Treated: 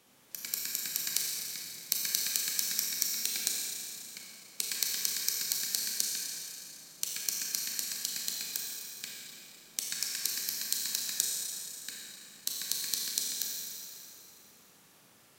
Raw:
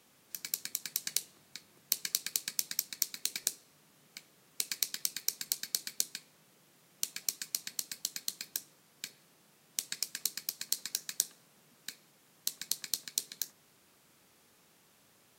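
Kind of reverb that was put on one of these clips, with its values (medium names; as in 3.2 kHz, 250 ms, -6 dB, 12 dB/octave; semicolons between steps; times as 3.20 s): Schroeder reverb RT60 2.6 s, combs from 28 ms, DRR -2 dB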